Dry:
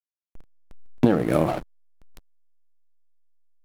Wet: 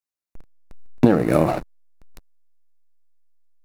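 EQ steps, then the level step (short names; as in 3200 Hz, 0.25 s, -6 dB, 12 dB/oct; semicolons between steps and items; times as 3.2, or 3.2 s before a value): notch 3200 Hz, Q 6.3; +3.5 dB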